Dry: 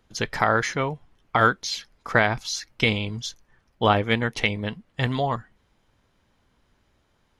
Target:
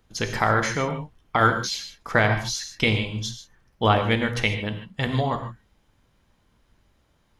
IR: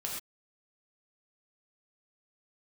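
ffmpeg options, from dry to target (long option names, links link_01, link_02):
-filter_complex "[0:a]highshelf=frequency=9500:gain=6.5,asplit=2[link_01][link_02];[1:a]atrim=start_sample=2205,asetrate=37926,aresample=44100,lowshelf=frequency=210:gain=7.5[link_03];[link_02][link_03]afir=irnorm=-1:irlink=0,volume=-4.5dB[link_04];[link_01][link_04]amix=inputs=2:normalize=0,volume=-4.5dB"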